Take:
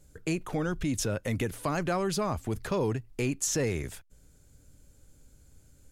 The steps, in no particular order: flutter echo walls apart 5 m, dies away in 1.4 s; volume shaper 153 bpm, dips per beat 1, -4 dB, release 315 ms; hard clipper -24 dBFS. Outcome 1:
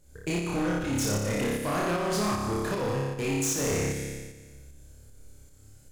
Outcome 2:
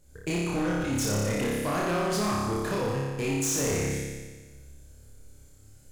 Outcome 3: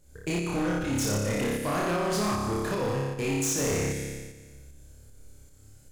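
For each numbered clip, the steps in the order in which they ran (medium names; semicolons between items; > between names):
flutter echo > hard clipper > volume shaper; volume shaper > flutter echo > hard clipper; flutter echo > volume shaper > hard clipper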